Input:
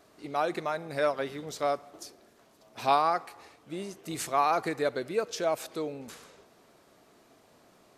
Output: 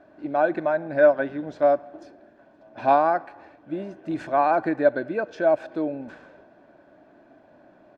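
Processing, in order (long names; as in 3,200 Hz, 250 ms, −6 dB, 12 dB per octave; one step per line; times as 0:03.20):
low-pass filter 2,200 Hz 12 dB per octave
comb filter 1.2 ms, depth 36%
hollow resonant body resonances 310/580/1,500 Hz, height 13 dB, ringing for 30 ms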